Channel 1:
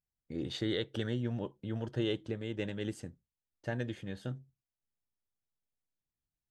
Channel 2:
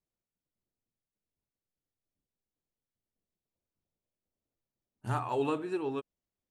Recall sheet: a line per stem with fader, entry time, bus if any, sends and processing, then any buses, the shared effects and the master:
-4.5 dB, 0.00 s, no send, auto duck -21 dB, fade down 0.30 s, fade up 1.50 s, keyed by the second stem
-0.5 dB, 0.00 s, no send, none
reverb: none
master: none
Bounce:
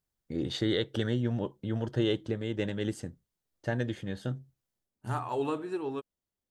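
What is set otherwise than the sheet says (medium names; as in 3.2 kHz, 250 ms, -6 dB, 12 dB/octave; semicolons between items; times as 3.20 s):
stem 1 -4.5 dB -> +5.0 dB; master: extra peaking EQ 2.5 kHz -4 dB 0.35 oct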